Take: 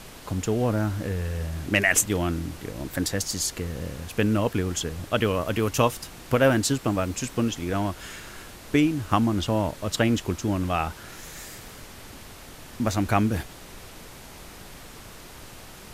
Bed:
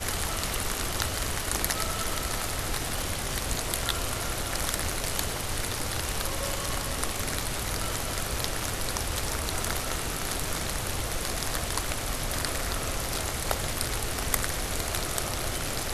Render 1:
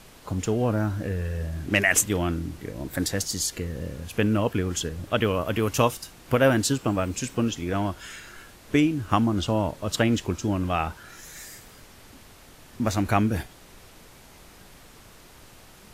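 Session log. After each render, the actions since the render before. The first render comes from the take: noise print and reduce 6 dB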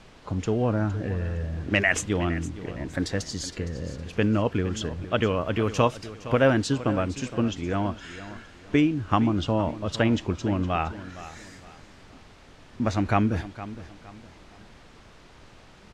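distance through air 110 m; feedback delay 463 ms, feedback 33%, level -15 dB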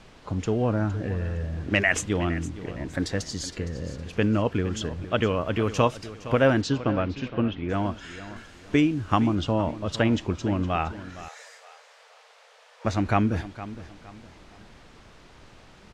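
6.61–7.68 s: low-pass 6.9 kHz -> 2.9 kHz 24 dB/octave; 8.36–9.35 s: treble shelf 6.2 kHz +7 dB; 11.28–12.85 s: brick-wall FIR high-pass 430 Hz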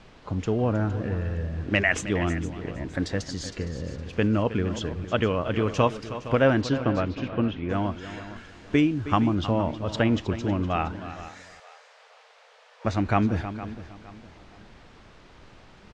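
distance through air 58 m; delay 316 ms -13.5 dB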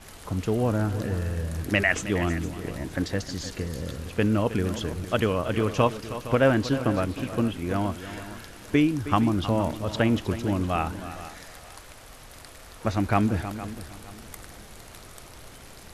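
add bed -16.5 dB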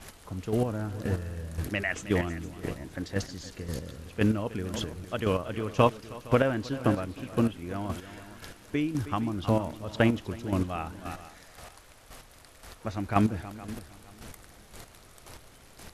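square tremolo 1.9 Hz, depth 60%, duty 20%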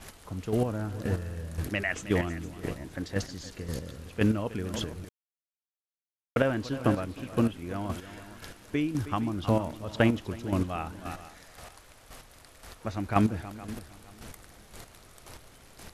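5.09–6.36 s: mute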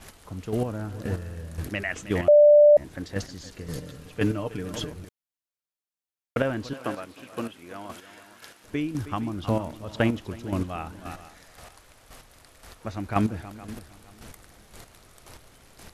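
2.28–2.77 s: bleep 591 Hz -10.5 dBFS; 3.66–4.92 s: comb 6.7 ms, depth 54%; 6.73–8.64 s: high-pass 600 Hz 6 dB/octave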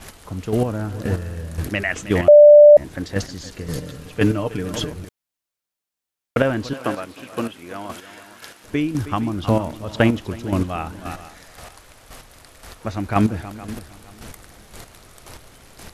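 trim +7 dB; peak limiter -3 dBFS, peak gain reduction 2 dB

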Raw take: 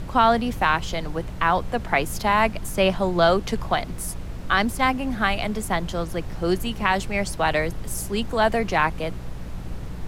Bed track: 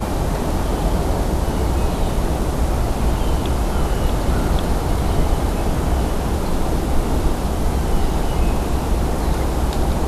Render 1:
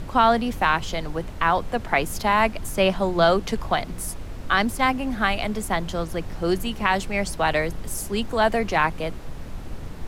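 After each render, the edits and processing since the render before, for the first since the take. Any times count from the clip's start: de-hum 60 Hz, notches 3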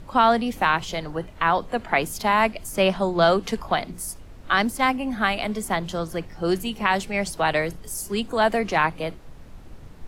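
noise print and reduce 9 dB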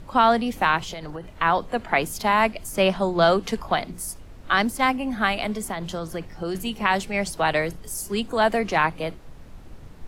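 0.79–1.27 s: compression 10:1, threshold -29 dBFS; 5.52–6.55 s: compression, threshold -24 dBFS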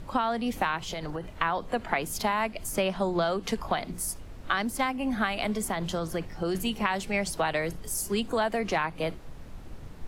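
compression 10:1, threshold -23 dBFS, peak gain reduction 11.5 dB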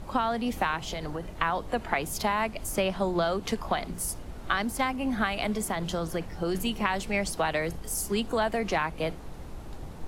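add bed track -25.5 dB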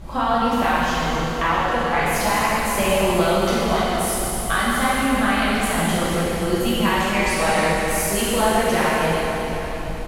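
delay 785 ms -16 dB; plate-style reverb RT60 3.4 s, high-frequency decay 1×, DRR -9.5 dB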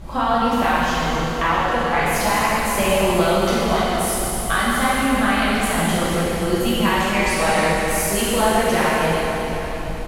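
trim +1 dB

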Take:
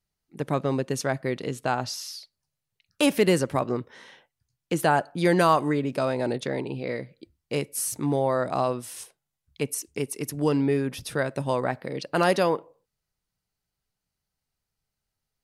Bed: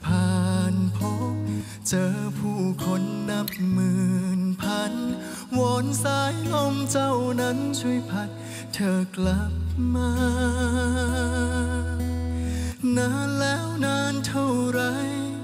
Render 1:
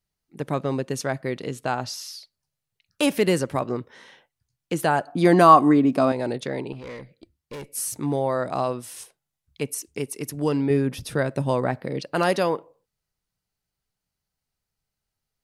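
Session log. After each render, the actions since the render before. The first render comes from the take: 5.07–6.12 s: small resonant body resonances 270/720/1100 Hz, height 11 dB, ringing for 25 ms; 6.72–7.73 s: valve stage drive 33 dB, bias 0.5; 10.70–12.02 s: bass shelf 440 Hz +6 dB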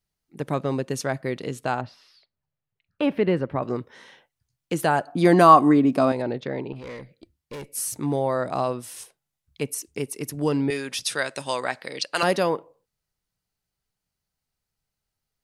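1.81–3.63 s: distance through air 440 m; 6.22–6.76 s: distance through air 200 m; 10.70–12.23 s: frequency weighting ITU-R 468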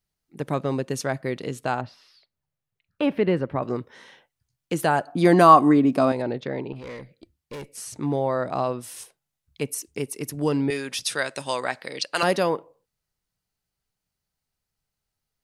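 7.72–8.81 s: distance through air 65 m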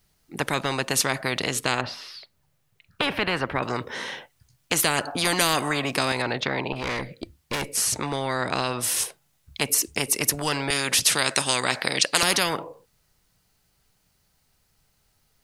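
spectrum-flattening compressor 4:1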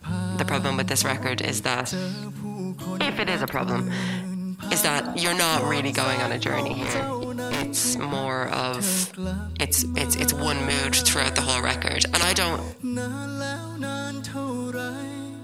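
add bed -6 dB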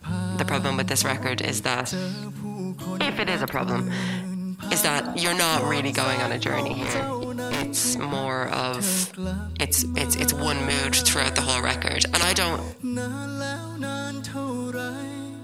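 no audible change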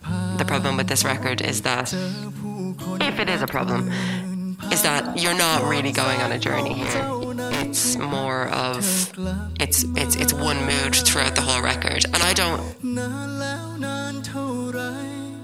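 trim +2.5 dB; peak limiter -1 dBFS, peak gain reduction 2 dB

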